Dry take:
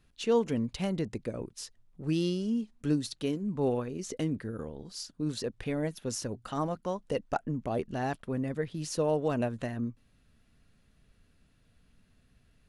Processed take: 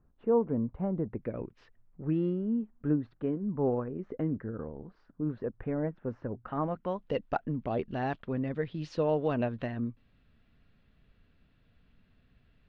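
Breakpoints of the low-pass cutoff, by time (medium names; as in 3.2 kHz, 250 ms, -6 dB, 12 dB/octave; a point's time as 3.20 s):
low-pass 24 dB/octave
1.01 s 1.2 kHz
1.36 s 2.7 kHz
2.36 s 1.6 kHz
6.30 s 1.6 kHz
7.10 s 3.8 kHz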